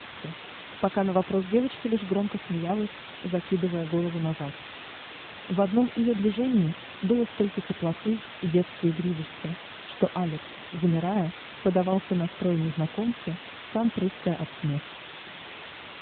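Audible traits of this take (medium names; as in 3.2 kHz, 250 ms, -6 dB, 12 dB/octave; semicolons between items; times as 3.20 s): tremolo saw down 2.6 Hz, depth 50%; a quantiser's noise floor 6-bit, dither triangular; AMR-NB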